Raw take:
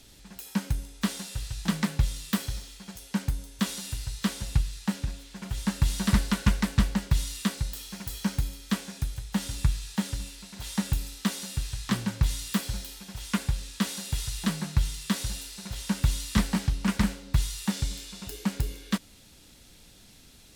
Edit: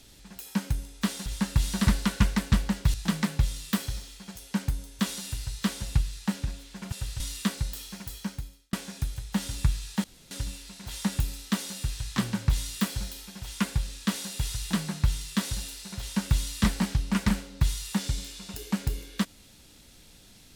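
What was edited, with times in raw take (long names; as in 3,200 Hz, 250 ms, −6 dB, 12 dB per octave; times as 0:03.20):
0:01.26–0:01.54: swap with 0:05.52–0:07.20
0:07.83–0:08.73: fade out
0:10.04: splice in room tone 0.27 s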